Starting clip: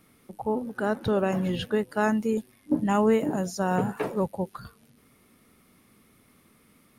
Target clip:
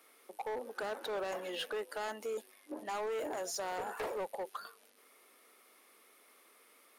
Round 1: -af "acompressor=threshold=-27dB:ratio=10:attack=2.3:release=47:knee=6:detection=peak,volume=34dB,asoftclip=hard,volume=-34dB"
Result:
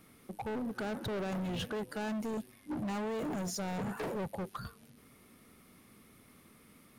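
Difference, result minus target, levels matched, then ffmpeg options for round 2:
500 Hz band −3.0 dB
-af "acompressor=threshold=-27dB:ratio=10:attack=2.3:release=47:knee=6:detection=peak,highpass=frequency=420:width=0.5412,highpass=frequency=420:width=1.3066,volume=34dB,asoftclip=hard,volume=-34dB"

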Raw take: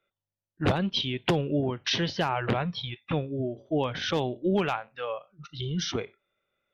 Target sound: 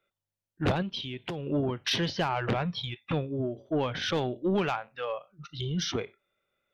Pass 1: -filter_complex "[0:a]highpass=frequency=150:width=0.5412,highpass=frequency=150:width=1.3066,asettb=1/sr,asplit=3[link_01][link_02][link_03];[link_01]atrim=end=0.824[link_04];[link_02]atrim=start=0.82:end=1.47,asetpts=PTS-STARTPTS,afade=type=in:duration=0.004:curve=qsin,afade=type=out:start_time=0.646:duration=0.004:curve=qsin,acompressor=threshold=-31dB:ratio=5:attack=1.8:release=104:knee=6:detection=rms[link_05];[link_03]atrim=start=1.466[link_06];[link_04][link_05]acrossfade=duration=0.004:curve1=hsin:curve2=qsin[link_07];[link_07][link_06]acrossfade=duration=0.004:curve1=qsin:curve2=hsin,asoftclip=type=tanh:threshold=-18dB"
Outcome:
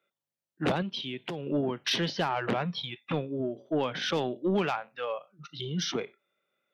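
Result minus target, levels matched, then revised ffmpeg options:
125 Hz band −3.0 dB
-filter_complex "[0:a]asettb=1/sr,asplit=3[link_01][link_02][link_03];[link_01]atrim=end=0.824[link_04];[link_02]atrim=start=0.82:end=1.47,asetpts=PTS-STARTPTS,afade=type=in:duration=0.004:curve=qsin,afade=type=out:start_time=0.646:duration=0.004:curve=qsin,acompressor=threshold=-31dB:ratio=5:attack=1.8:release=104:knee=6:detection=rms[link_05];[link_03]atrim=start=1.466[link_06];[link_04][link_05]acrossfade=duration=0.004:curve1=hsin:curve2=qsin[link_07];[link_07][link_06]acrossfade=duration=0.004:curve1=qsin:curve2=hsin,asoftclip=type=tanh:threshold=-18dB"

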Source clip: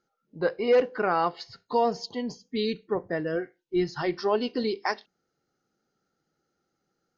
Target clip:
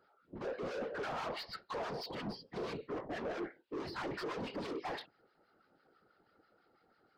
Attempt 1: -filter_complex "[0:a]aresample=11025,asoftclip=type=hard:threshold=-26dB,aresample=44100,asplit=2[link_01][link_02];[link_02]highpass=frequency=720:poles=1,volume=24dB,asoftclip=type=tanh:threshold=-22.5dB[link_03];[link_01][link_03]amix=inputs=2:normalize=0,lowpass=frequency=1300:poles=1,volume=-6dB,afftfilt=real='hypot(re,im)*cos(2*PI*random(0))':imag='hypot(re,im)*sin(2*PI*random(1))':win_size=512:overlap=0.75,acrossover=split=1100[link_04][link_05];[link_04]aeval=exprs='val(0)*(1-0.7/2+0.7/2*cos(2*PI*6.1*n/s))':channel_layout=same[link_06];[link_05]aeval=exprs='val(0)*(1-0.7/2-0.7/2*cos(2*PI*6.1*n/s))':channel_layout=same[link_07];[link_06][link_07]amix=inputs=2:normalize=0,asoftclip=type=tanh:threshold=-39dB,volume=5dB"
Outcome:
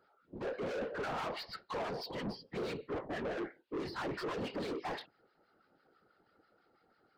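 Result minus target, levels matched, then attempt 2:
hard clipping: distortion −5 dB
-filter_complex "[0:a]aresample=11025,asoftclip=type=hard:threshold=-38dB,aresample=44100,asplit=2[link_01][link_02];[link_02]highpass=frequency=720:poles=1,volume=24dB,asoftclip=type=tanh:threshold=-22.5dB[link_03];[link_01][link_03]amix=inputs=2:normalize=0,lowpass=frequency=1300:poles=1,volume=-6dB,afftfilt=real='hypot(re,im)*cos(2*PI*random(0))':imag='hypot(re,im)*sin(2*PI*random(1))':win_size=512:overlap=0.75,acrossover=split=1100[link_04][link_05];[link_04]aeval=exprs='val(0)*(1-0.7/2+0.7/2*cos(2*PI*6.1*n/s))':channel_layout=same[link_06];[link_05]aeval=exprs='val(0)*(1-0.7/2-0.7/2*cos(2*PI*6.1*n/s))':channel_layout=same[link_07];[link_06][link_07]amix=inputs=2:normalize=0,asoftclip=type=tanh:threshold=-39dB,volume=5dB"

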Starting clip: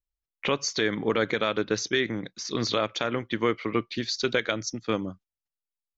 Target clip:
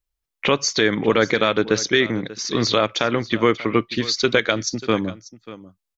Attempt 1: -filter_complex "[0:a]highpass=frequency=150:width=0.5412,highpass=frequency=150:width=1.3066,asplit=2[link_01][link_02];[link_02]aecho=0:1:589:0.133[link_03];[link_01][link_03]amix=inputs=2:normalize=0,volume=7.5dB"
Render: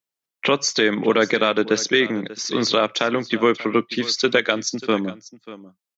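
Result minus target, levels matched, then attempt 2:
125 Hz band −6.0 dB
-filter_complex "[0:a]asplit=2[link_01][link_02];[link_02]aecho=0:1:589:0.133[link_03];[link_01][link_03]amix=inputs=2:normalize=0,volume=7.5dB"

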